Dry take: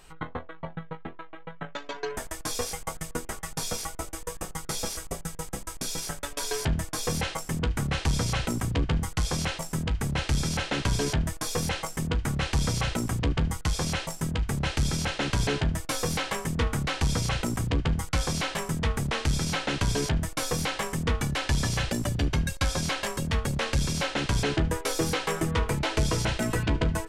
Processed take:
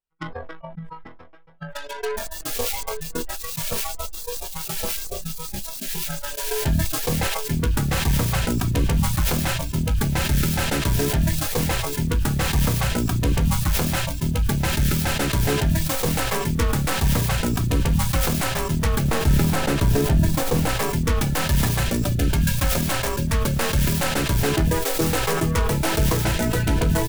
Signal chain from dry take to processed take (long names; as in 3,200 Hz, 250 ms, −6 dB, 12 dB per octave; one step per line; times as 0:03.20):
stylus tracing distortion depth 0.48 ms
downward expander −29 dBFS
0:19.03–0:20.69: tilt shelving filter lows +3.5 dB, about 1,300 Hz
in parallel at 0 dB: brickwall limiter −25.5 dBFS, peak gain reduction 13.5 dB
on the sum: repeating echo 848 ms, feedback 37%, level −11.5 dB
noise reduction from a noise print of the clip's start 17 dB
level that may fall only so fast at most 28 dB per second
level +1.5 dB